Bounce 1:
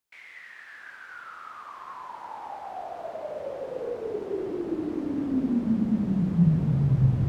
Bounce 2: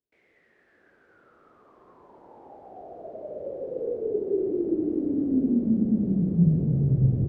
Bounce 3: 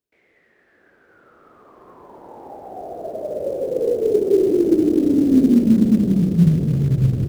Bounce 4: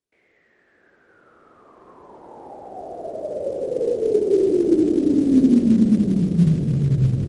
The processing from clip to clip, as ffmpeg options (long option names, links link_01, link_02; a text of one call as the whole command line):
ffmpeg -i in.wav -af "firequalizer=gain_entry='entry(150,0);entry(400,6);entry(960,-18);entry(2700,-21)':delay=0.05:min_phase=1" out.wav
ffmpeg -i in.wav -filter_complex "[0:a]dynaudnorm=framelen=240:gausssize=13:maxgain=6dB,asplit=2[link_01][link_02];[link_02]acrusher=bits=5:mode=log:mix=0:aa=0.000001,volume=-4dB[link_03];[link_01][link_03]amix=inputs=2:normalize=0" out.wav
ffmpeg -i in.wav -af "aecho=1:1:86:0.282,volume=-1.5dB" -ar 44100 -c:a libmp3lame -b:a 48k out.mp3